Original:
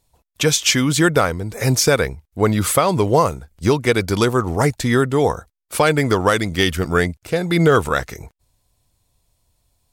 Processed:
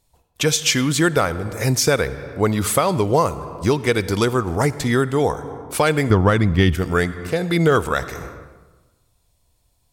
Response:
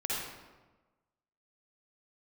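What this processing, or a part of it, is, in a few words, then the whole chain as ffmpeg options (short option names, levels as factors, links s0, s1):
ducked reverb: -filter_complex "[0:a]asettb=1/sr,asplit=3[s0][s1][s2];[s0]atrim=end=6.104[s3];[s1]atrim=start=6.1:end=6.75,asetpts=PTS-STARTPTS,afade=t=in:d=0.004:c=qsin,afade=t=out:st=0.646:d=0.004:c=qsin,bass=f=250:g=11,treble=f=4000:g=-12[s4];[s2]atrim=start=6.746[s5];[s3][s4]acrossfade=d=0.004:c1=hsin:c2=qsin[s6];[s6][s5]acrossfade=d=0.004:c1=qsin:c2=hsin,asplit=3[s7][s8][s9];[1:a]atrim=start_sample=2205[s10];[s8][s10]afir=irnorm=-1:irlink=0[s11];[s9]apad=whole_len=437593[s12];[s11][s12]sidechaincompress=threshold=0.0501:ratio=12:attack=38:release=310,volume=0.376[s13];[s7][s13]amix=inputs=2:normalize=0,volume=0.75"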